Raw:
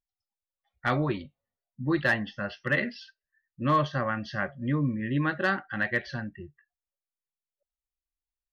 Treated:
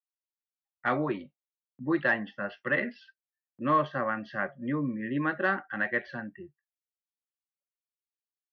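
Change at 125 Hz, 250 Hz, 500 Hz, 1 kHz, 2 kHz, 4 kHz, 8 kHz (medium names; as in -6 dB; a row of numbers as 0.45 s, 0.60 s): -8.5 dB, -2.0 dB, 0.0 dB, 0.0 dB, -1.0 dB, -8.0 dB, no reading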